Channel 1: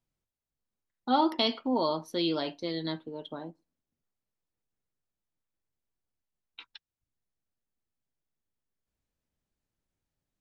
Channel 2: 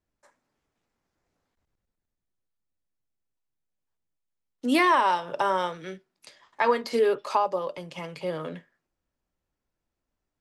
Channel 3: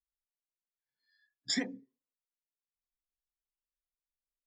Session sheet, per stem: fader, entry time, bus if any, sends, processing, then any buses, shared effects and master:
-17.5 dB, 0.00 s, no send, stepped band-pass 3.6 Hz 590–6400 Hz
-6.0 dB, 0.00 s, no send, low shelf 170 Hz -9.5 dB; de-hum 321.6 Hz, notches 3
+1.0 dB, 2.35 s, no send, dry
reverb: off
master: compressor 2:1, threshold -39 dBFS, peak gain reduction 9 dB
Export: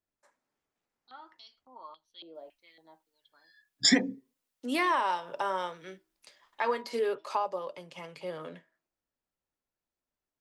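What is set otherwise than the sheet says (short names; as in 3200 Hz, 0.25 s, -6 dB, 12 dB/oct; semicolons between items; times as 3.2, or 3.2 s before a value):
stem 1 -17.5 dB -> -10.0 dB; stem 3 +1.0 dB -> +10.0 dB; master: missing compressor 2:1, threshold -39 dBFS, peak gain reduction 9 dB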